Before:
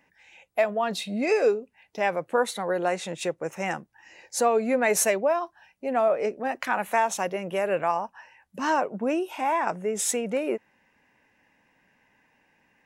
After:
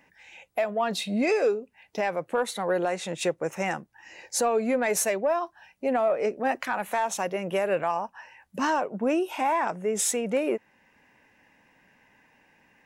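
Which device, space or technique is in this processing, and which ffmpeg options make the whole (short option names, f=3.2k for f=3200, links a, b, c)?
soft clipper into limiter: -af "asoftclip=type=tanh:threshold=-11.5dB,alimiter=limit=-20.5dB:level=0:latency=1:release=496,volume=4dB"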